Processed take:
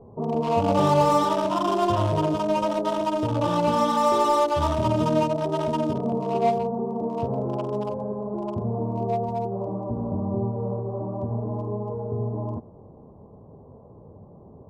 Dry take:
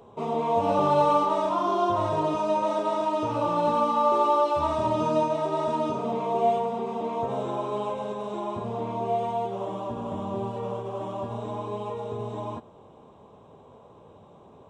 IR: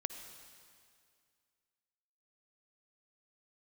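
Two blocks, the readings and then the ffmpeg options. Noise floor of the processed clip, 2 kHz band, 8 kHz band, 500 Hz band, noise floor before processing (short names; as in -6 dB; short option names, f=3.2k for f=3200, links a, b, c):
-48 dBFS, +3.5 dB, n/a, +1.5 dB, -52 dBFS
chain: -filter_complex "[0:a]lowshelf=f=230:g=12,acrossover=split=1000[a][b];[b]acrusher=bits=4:mix=0:aa=0.5[c];[a][c]amix=inputs=2:normalize=0"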